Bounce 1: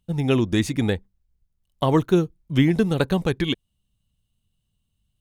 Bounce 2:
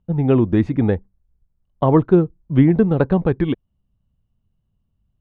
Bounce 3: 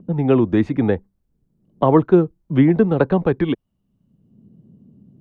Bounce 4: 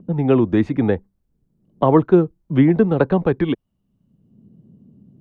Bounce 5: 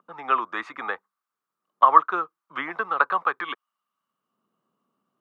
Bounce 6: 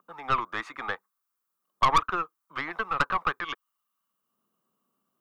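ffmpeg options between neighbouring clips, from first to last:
ffmpeg -i in.wav -af "lowpass=1200,volume=5dB" out.wav
ffmpeg -i in.wav -filter_complex "[0:a]lowshelf=frequency=150:gain=-10.5,acrossover=split=160|360|890[link_01][link_02][link_03][link_04];[link_02]acompressor=mode=upward:threshold=-23dB:ratio=2.5[link_05];[link_01][link_05][link_03][link_04]amix=inputs=4:normalize=0,volume=2.5dB" out.wav
ffmpeg -i in.wav -af anull out.wav
ffmpeg -i in.wav -af "highpass=frequency=1200:width_type=q:width=7.7,volume=-2dB" out.wav
ffmpeg -i in.wav -af "aemphasis=mode=production:type=50kf,aeval=exprs='(tanh(5.01*val(0)+0.55)-tanh(0.55))/5.01':channel_layout=same,volume=-1dB" out.wav

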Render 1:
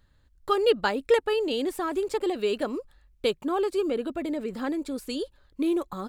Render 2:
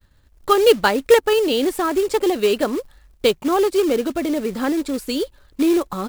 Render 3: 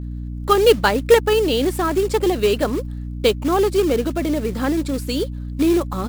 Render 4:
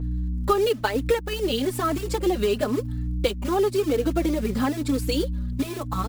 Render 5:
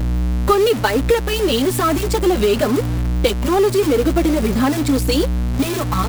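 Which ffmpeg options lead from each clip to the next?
ffmpeg -i in.wav -af "agate=range=-33dB:threshold=-59dB:ratio=3:detection=peak,acrusher=bits=4:mode=log:mix=0:aa=0.000001,volume=8.5dB" out.wav
ffmpeg -i in.wav -af "aeval=exprs='val(0)+0.0447*(sin(2*PI*60*n/s)+sin(2*PI*2*60*n/s)/2+sin(2*PI*3*60*n/s)/3+sin(2*PI*4*60*n/s)/4+sin(2*PI*5*60*n/s)/5)':channel_layout=same" out.wav
ffmpeg -i in.wav -filter_complex "[0:a]acompressor=threshold=-20dB:ratio=10,asplit=2[link_01][link_02];[link_02]adelay=4,afreqshift=1[link_03];[link_01][link_03]amix=inputs=2:normalize=1,volume=3.5dB" out.wav
ffmpeg -i in.wav -af "aeval=exprs='val(0)+0.5*0.0531*sgn(val(0))':channel_layout=same,volume=5dB" out.wav

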